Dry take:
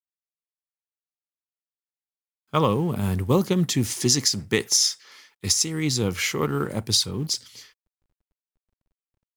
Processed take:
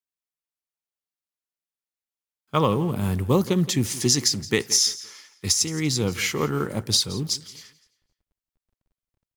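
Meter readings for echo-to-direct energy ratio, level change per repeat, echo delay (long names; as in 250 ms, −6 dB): −17.5 dB, −10.0 dB, 171 ms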